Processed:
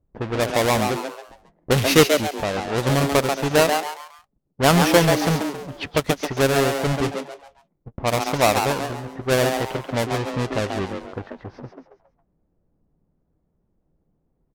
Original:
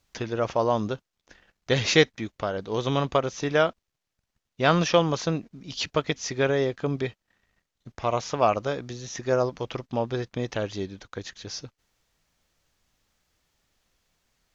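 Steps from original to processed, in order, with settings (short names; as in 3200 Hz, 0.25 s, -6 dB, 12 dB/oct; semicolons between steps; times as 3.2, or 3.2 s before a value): half-waves squared off; low-pass opened by the level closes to 440 Hz, open at -18 dBFS; frequency-shifting echo 0.137 s, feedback 35%, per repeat +140 Hz, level -5.5 dB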